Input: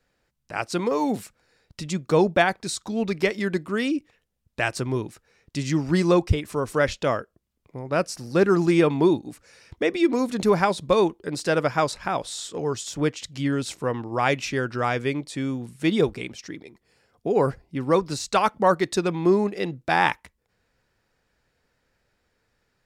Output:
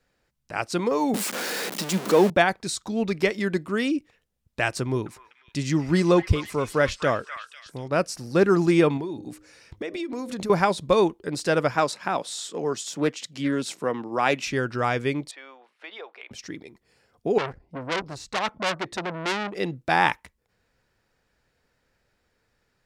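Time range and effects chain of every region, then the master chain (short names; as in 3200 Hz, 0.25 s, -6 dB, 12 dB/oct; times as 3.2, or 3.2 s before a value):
1.14–2.3 zero-crossing step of -22.5 dBFS + Chebyshev high-pass 190 Hz, order 4
4.81–7.88 gate with hold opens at -48 dBFS, closes at -56 dBFS + delay with a stepping band-pass 0.248 s, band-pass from 1600 Hz, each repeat 0.7 oct, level -6 dB
8.97–10.5 de-hum 102.5 Hz, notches 6 + compressor 16:1, threshold -27 dBFS
11.75–14.47 HPF 160 Hz 24 dB/oct + Doppler distortion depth 0.1 ms
15.31–16.31 HPF 640 Hz 24 dB/oct + air absorption 330 m + compressor 3:1, threshold -37 dBFS
17.38–19.55 high shelf 3100 Hz -12 dB + core saturation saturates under 3700 Hz
whole clip: dry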